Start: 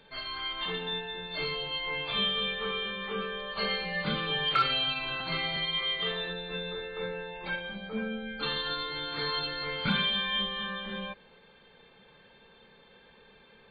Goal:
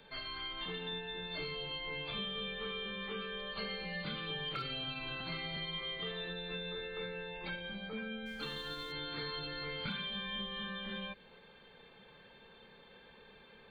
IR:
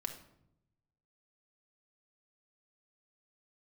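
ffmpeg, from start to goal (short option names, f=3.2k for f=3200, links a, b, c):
-filter_complex "[0:a]acrossover=split=460|1600|3300[a][b][c][d];[a]acompressor=threshold=-42dB:ratio=4[e];[b]acompressor=threshold=-51dB:ratio=4[f];[c]acompressor=threshold=-45dB:ratio=4[g];[d]acompressor=threshold=-49dB:ratio=4[h];[e][f][g][h]amix=inputs=4:normalize=0,asplit=3[i][j][k];[i]afade=t=out:st=8.25:d=0.02[l];[j]aeval=exprs='sgn(val(0))*max(abs(val(0))-0.00141,0)':c=same,afade=t=in:st=8.25:d=0.02,afade=t=out:st=8.91:d=0.02[m];[k]afade=t=in:st=8.91:d=0.02[n];[l][m][n]amix=inputs=3:normalize=0,volume=-1dB"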